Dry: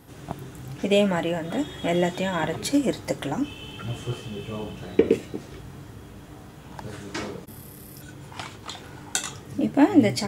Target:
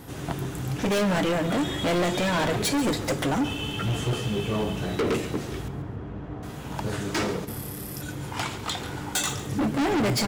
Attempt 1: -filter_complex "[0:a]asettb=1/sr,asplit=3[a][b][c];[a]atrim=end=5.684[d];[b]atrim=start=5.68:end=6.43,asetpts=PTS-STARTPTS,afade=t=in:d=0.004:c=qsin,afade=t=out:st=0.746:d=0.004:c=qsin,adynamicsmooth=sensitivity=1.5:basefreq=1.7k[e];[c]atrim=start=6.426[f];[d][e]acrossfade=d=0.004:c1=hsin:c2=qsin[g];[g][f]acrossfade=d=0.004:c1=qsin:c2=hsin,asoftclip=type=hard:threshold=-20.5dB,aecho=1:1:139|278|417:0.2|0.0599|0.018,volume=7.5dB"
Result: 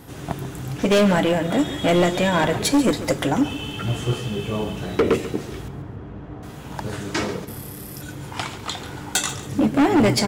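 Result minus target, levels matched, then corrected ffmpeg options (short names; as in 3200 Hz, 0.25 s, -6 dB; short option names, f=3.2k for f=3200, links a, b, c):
hard clip: distortion -5 dB
-filter_complex "[0:a]asettb=1/sr,asplit=3[a][b][c];[a]atrim=end=5.684[d];[b]atrim=start=5.68:end=6.43,asetpts=PTS-STARTPTS,afade=t=in:d=0.004:c=qsin,afade=t=out:st=0.746:d=0.004:c=qsin,adynamicsmooth=sensitivity=1.5:basefreq=1.7k[e];[c]atrim=start=6.426[f];[d][e]acrossfade=d=0.004:c1=hsin:c2=qsin[g];[g][f]acrossfade=d=0.004:c1=qsin:c2=hsin,asoftclip=type=hard:threshold=-29.5dB,aecho=1:1:139|278|417:0.2|0.0599|0.018,volume=7.5dB"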